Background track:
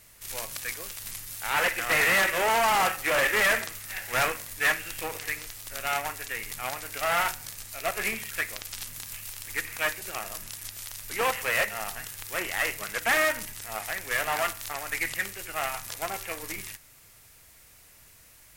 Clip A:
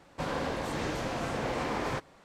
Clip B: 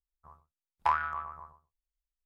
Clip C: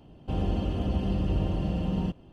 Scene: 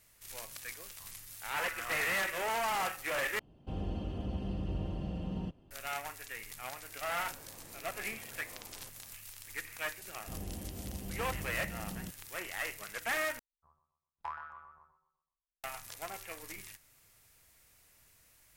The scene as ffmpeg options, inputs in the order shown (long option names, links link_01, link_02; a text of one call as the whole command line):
ffmpeg -i bed.wav -i cue0.wav -i cue1.wav -i cue2.wav -filter_complex "[2:a]asplit=2[link_01][link_02];[3:a]asplit=2[link_03][link_04];[0:a]volume=-10dB[link_05];[link_01]acompressor=threshold=-34dB:ratio=6:attack=3.2:release=140:knee=1:detection=peak[link_06];[1:a]acompressor=threshold=-45dB:ratio=6:attack=3.2:release=140:knee=1:detection=peak[link_07];[link_02]asplit=2[link_08][link_09];[link_09]adelay=125,lowpass=frequency=3300:poles=1,volume=-10.5dB,asplit=2[link_10][link_11];[link_11]adelay=125,lowpass=frequency=3300:poles=1,volume=0.42,asplit=2[link_12][link_13];[link_13]adelay=125,lowpass=frequency=3300:poles=1,volume=0.42,asplit=2[link_14][link_15];[link_15]adelay=125,lowpass=frequency=3300:poles=1,volume=0.42[link_16];[link_08][link_10][link_12][link_14][link_16]amix=inputs=5:normalize=0[link_17];[link_05]asplit=3[link_18][link_19][link_20];[link_18]atrim=end=3.394[link_21];[link_03]atrim=end=2.32,asetpts=PTS-STARTPTS,volume=-9.5dB[link_22];[link_19]atrim=start=5.706:end=13.394[link_23];[link_17]atrim=end=2.25,asetpts=PTS-STARTPTS,volume=-14.5dB[link_24];[link_20]atrim=start=15.636[link_25];[link_06]atrim=end=2.25,asetpts=PTS-STARTPTS,volume=-7.5dB,afade=type=in:duration=0.004:curve=hsin,afade=type=out:start_time=2.246:duration=0.004:curve=hsin,adelay=740[link_26];[link_07]atrim=end=2.24,asetpts=PTS-STARTPTS,volume=-8.5dB,afade=type=in:duration=0.004:curve=hsin,afade=type=out:start_time=2.236:duration=0.004:curve=hsin,adelay=304290S[link_27];[link_04]atrim=end=2.32,asetpts=PTS-STARTPTS,volume=-15dB,afade=type=in:duration=0.004:curve=hsin,afade=type=out:start_time=2.316:duration=0.004:curve=hsin,adelay=9990[link_28];[link_21][link_22]acrossfade=duration=0.004:curve1=hsin:curve2=hsin[link_29];[link_29][link_23]acrossfade=duration=0.004:curve1=hsin:curve2=hsin[link_30];[link_30][link_24]acrossfade=duration=0.004:curve1=hsin:curve2=hsin[link_31];[link_31][link_25]acrossfade=duration=0.004:curve1=hsin:curve2=hsin[link_32];[link_32][link_26][link_27][link_28]amix=inputs=4:normalize=0" out.wav